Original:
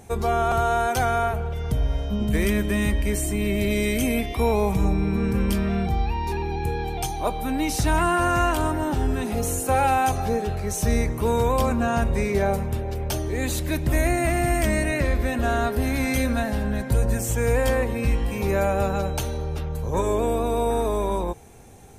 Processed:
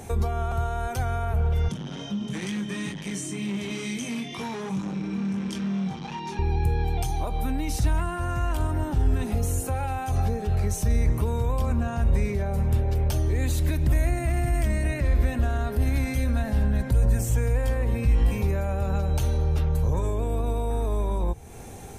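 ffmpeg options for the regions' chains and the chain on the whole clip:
ffmpeg -i in.wav -filter_complex "[0:a]asettb=1/sr,asplit=3[link_01][link_02][link_03];[link_01]atrim=end=1.684[link_04];[link_02]atrim=start=1.68:end=6.39,asetpts=PTS-STARTPTS,afade=type=in:duration=0.004:curve=qsin,afade=type=out:start_time=4.706:duration=0.004:curve=qsin,flanger=delay=20:depth=2.3:speed=2.2,asoftclip=type=hard:threshold=-25dB,highpass=frequency=150:width=0.5412,highpass=frequency=150:width=1.3066,equalizer=frequency=180:width_type=q:width=4:gain=5,equalizer=frequency=440:width_type=q:width=4:gain=-4,equalizer=frequency=630:width_type=q:width=4:gain=-8,equalizer=frequency=3300:width_type=q:width=4:gain=6,equalizer=frequency=6100:width_type=q:width=4:gain=9,lowpass=frequency=9900:width=0.5412,lowpass=frequency=9900:width=1.3066[link_05];[link_03]atrim=start=6.386[link_06];[link_04][link_05]acrossfade=duration=0.004:curve1=hsin:curve2=qsin[link_07];[link_07][link_06]acrossfade=duration=0.004:curve1=qsin:curve2=hsin,alimiter=limit=-17.5dB:level=0:latency=1:release=58,acrossover=split=140[link_08][link_09];[link_09]acompressor=threshold=-41dB:ratio=3[link_10];[link_08][link_10]amix=inputs=2:normalize=0,volume=6.5dB" out.wav

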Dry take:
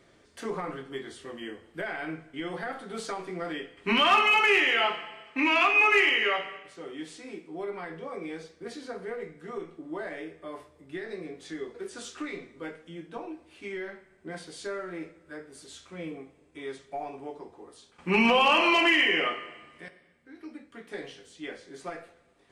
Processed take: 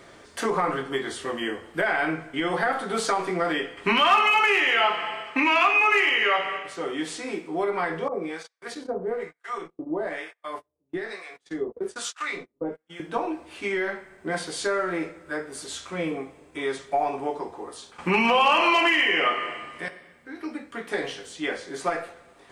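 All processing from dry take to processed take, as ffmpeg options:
ffmpeg -i in.wav -filter_complex "[0:a]asettb=1/sr,asplit=3[link_01][link_02][link_03];[link_01]atrim=end=8.084[link_04];[link_02]atrim=start=8.08:end=13,asetpts=PTS-STARTPTS,afade=type=in:duration=0.004:curve=qsin,afade=type=out:start_time=4.916:duration=0.004:curve=qsin,agate=range=-32dB:threshold=-45dB:ratio=16:release=100:detection=peak,acrossover=split=790[link_05][link_06];[link_05]aeval=exprs='val(0)*(1-1/2+1/2*cos(2*PI*1.1*n/s))':channel_layout=same[link_07];[link_06]aeval=exprs='val(0)*(1-1/2-1/2*cos(2*PI*1.1*n/s))':channel_layout=same[link_08];[link_07][link_08]amix=inputs=2:normalize=0[link_09];[link_03]atrim=start=12.996[link_10];[link_04][link_09]acrossfade=duration=0.004:curve1=hsin:curve2=qsin[link_11];[link_11][link_10]acrossfade=duration=0.004:curve1=qsin:curve2=hsin,highshelf=frequency=4400:gain=5.5,acompressor=threshold=-32dB:ratio=3,equalizer=frequency=1000:width_type=o:width=2:gain=7,volume=7.5dB" out.wav

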